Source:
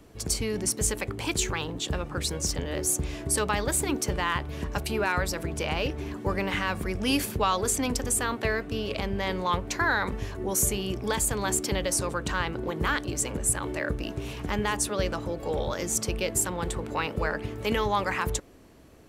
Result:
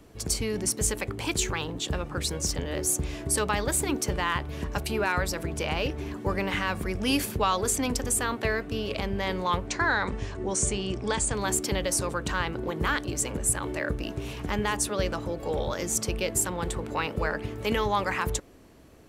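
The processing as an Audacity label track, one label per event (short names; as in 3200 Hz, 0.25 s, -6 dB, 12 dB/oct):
9.670000	11.350000	steep low-pass 9400 Hz 96 dB/oct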